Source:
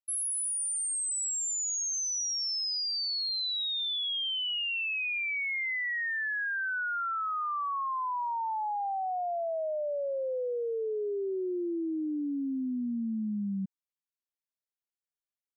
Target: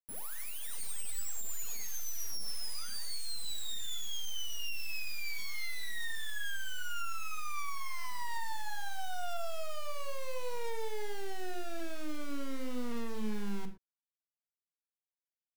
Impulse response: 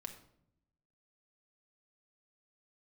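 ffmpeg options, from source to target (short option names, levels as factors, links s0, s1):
-filter_complex "[0:a]afwtdn=0.0112,asettb=1/sr,asplit=3[s0][s1][s2];[s0]atrim=end=2.894[s3];[s1]atrim=start=2.89:end=3.45,asetpts=PTS-STARTPTS,afade=t=in:d=0.004:c=qsin,afade=t=out:st=0.556:d=0.004:c=qsin,lowpass=f=6600:w=0.5412,lowpass=f=6600:w=1.3066[s4];[s2]atrim=start=3.446[s5];[s3][s4]acrossfade=d=0.004:c1=hsin:c2=qsin[s6];[s6][s5]acrossfade=d=0.004:c1=qsin:c2=hsin,asplit=3[s7][s8][s9];[s7]afade=t=out:st=11.78:d=0.02[s10];[s8]tiltshelf=f=710:g=-8,afade=t=in:st=11.78:d=0.02,afade=t=out:st=12.91:d=0.02[s11];[s9]afade=t=in:st=12.91:d=0.02[s12];[s10][s11][s12]amix=inputs=3:normalize=0,alimiter=level_in=3.98:limit=0.0631:level=0:latency=1,volume=0.251,acrusher=bits=4:dc=4:mix=0:aa=0.000001[s13];[1:a]atrim=start_sample=2205,afade=t=out:st=0.17:d=0.01,atrim=end_sample=7938[s14];[s13][s14]afir=irnorm=-1:irlink=0,volume=1.68"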